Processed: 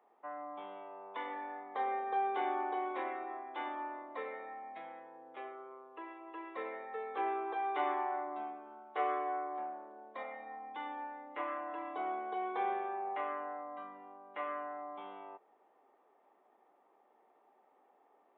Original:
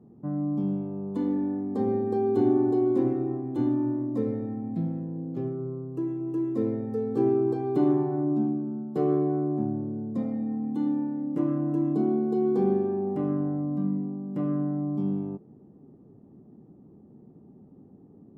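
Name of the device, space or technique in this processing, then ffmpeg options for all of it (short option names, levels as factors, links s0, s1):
musical greeting card: -af "aresample=8000,aresample=44100,highpass=f=770:w=0.5412,highpass=f=770:w=1.3066,equalizer=f=2100:t=o:w=0.43:g=9,volume=2.11"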